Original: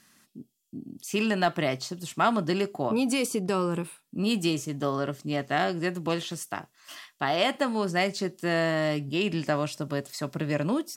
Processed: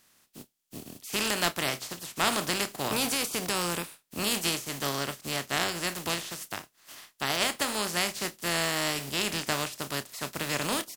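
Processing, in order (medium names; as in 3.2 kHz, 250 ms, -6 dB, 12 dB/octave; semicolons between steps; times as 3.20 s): spectral contrast reduction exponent 0.38; doubling 29 ms -14 dB; trim -3 dB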